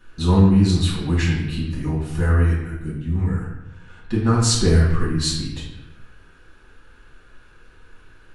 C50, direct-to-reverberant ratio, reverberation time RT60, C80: 2.5 dB, −7.5 dB, 0.85 s, 5.5 dB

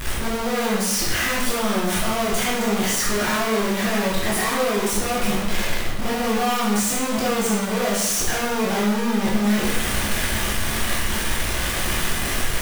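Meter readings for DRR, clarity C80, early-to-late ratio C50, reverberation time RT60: −7.0 dB, 4.5 dB, 1.0 dB, 0.90 s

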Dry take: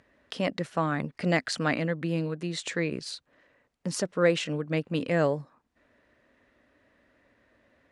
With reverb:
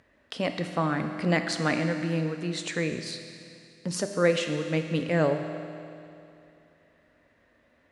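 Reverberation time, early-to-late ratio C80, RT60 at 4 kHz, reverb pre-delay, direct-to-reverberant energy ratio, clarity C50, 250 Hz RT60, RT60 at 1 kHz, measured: 2.7 s, 8.0 dB, 2.6 s, 10 ms, 6.0 dB, 7.0 dB, 2.7 s, 2.7 s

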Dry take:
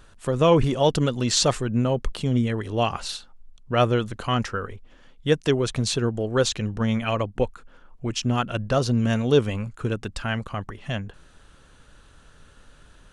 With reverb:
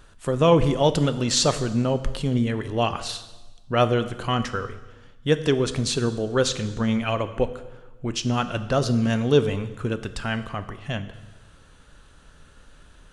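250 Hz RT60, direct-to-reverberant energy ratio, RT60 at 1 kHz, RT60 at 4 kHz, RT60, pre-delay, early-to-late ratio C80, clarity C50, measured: 1.3 s, 10.5 dB, 1.1 s, 1.1 s, 1.1 s, 8 ms, 15.0 dB, 13.5 dB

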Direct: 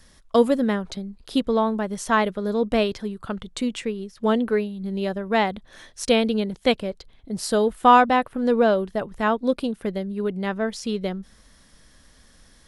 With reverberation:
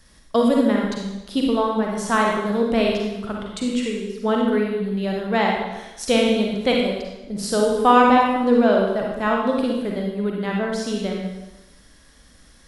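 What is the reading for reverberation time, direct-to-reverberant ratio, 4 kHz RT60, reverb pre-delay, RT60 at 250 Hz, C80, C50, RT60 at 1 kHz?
1.0 s, −1.5 dB, 0.95 s, 34 ms, 0.95 s, 3.5 dB, 0.5 dB, 1.0 s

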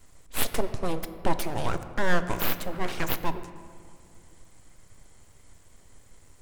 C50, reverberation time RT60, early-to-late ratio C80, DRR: 11.5 dB, 2.2 s, 12.5 dB, 10.0 dB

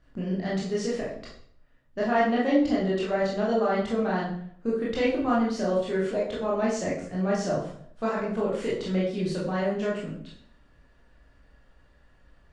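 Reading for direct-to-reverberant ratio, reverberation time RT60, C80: −6.5 dB, 0.60 s, 7.5 dB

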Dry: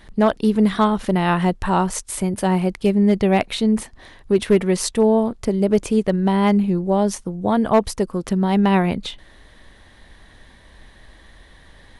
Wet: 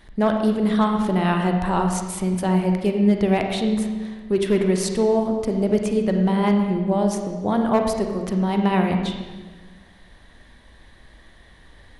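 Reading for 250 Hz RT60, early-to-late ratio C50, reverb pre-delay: 1.7 s, 4.5 dB, 34 ms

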